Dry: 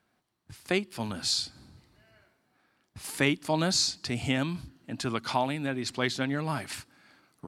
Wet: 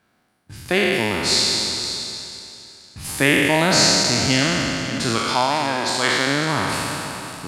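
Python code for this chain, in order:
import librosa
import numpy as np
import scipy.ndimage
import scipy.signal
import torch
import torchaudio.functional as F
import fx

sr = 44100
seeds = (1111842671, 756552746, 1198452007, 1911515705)

y = fx.spec_trails(x, sr, decay_s=2.85)
y = fx.low_shelf(y, sr, hz=400.0, db=-6.5, at=(5.18, 6.27))
y = y + 10.0 ** (-13.0 / 20.0) * np.pad(y, (int(548 * sr / 1000.0), 0))[:len(y)]
y = F.gain(torch.from_numpy(y), 5.5).numpy()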